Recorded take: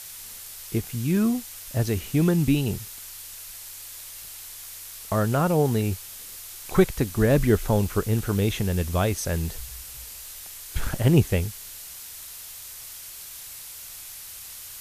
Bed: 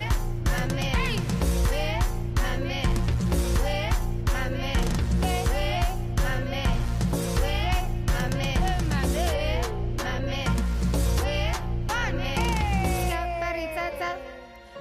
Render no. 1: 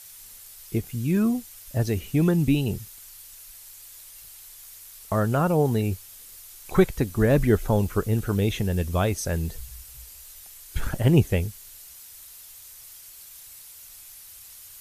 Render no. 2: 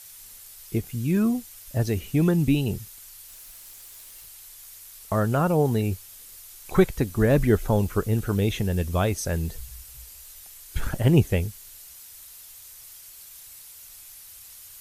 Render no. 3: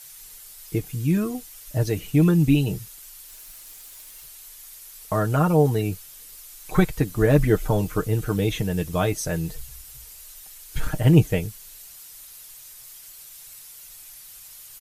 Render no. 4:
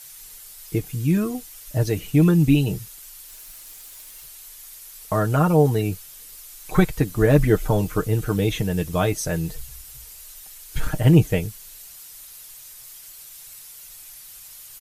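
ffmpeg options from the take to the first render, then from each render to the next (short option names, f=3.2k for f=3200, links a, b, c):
-af "afftdn=nr=8:nf=-41"
-filter_complex "[0:a]asettb=1/sr,asplit=3[a][b][c];[a]atrim=end=3.284[d];[b]atrim=start=3.28:end=4.26,asetpts=PTS-STARTPTS,afade=t=in:d=0.004:c=qsin,afade=t=out:st=0.976:d=0.004:c=qsin,acrusher=bits=7:mix=0:aa=0.5[e];[c]atrim=start=4.256[f];[d][e]acrossfade=d=0.004:c1=hsin:c2=qsin[g];[g][f]acrossfade=d=0.004:c1=qsin:c2=hsin"
-af "aecho=1:1:6.5:0.65"
-af "volume=1.5dB,alimiter=limit=-3dB:level=0:latency=1"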